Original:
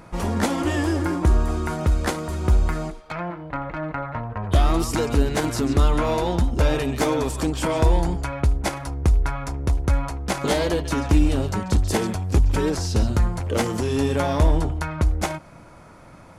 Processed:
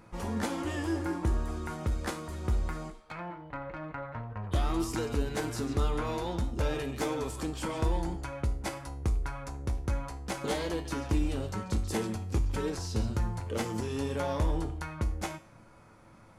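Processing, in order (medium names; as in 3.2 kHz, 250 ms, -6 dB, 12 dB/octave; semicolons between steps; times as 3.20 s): band-stop 650 Hz, Q 17; feedback comb 110 Hz, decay 0.43 s, harmonics all, mix 70%; trim -2.5 dB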